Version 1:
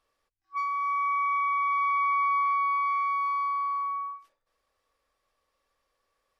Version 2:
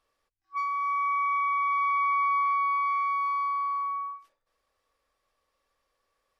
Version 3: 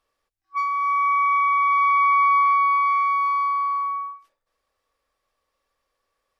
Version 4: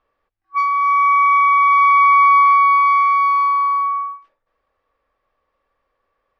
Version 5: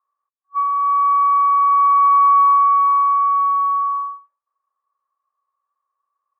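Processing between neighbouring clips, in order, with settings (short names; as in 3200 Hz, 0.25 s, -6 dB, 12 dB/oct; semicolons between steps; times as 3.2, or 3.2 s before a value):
nothing audible
upward expander 1.5:1, over -40 dBFS; gain +8 dB
low-pass opened by the level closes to 2100 Hz, open at -14.5 dBFS; gain +6.5 dB
band-pass 1100 Hz, Q 10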